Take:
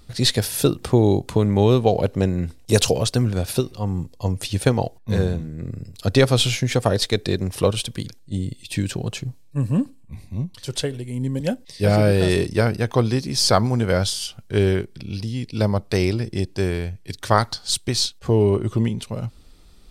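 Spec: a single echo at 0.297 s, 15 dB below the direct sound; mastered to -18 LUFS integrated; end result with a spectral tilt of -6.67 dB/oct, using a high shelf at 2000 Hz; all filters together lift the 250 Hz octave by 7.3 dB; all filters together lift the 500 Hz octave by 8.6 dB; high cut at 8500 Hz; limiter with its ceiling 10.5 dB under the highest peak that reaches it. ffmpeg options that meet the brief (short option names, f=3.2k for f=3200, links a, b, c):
-af "lowpass=8.5k,equalizer=f=250:t=o:g=7,equalizer=f=500:t=o:g=8.5,highshelf=f=2k:g=-3,alimiter=limit=-6dB:level=0:latency=1,aecho=1:1:297:0.178,volume=1.5dB"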